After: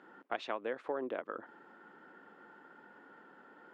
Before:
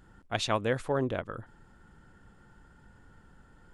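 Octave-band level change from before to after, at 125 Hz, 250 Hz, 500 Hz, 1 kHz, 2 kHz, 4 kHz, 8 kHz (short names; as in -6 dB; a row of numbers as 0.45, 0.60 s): -30.0 dB, -10.5 dB, -7.0 dB, -6.0 dB, -7.0 dB, -14.0 dB, under -20 dB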